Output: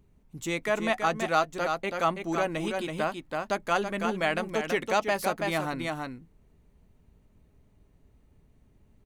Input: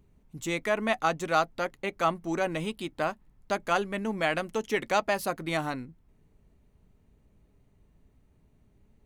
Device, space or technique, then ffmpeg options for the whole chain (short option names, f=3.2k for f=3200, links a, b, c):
ducked delay: -filter_complex "[0:a]asplit=3[a][b][c];[b]adelay=329,volume=-3dB[d];[c]apad=whole_len=413837[e];[d][e]sidechaincompress=threshold=-29dB:ratio=8:attack=16:release=243[f];[a][f]amix=inputs=2:normalize=0"